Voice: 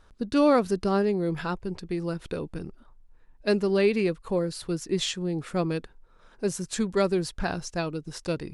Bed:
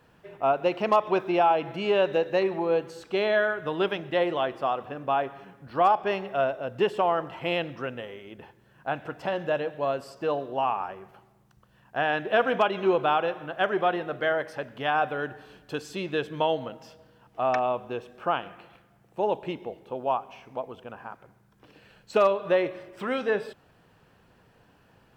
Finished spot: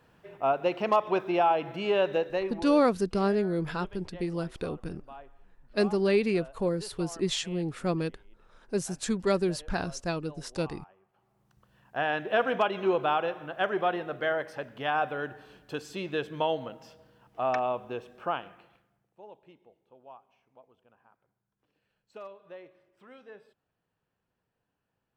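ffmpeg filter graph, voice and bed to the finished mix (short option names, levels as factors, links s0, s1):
-filter_complex "[0:a]adelay=2300,volume=0.794[s0];[1:a]volume=6.31,afade=t=out:st=2.14:d=0.69:silence=0.112202,afade=t=in:st=11.13:d=0.51:silence=0.11885,afade=t=out:st=18.12:d=1.07:silence=0.1[s1];[s0][s1]amix=inputs=2:normalize=0"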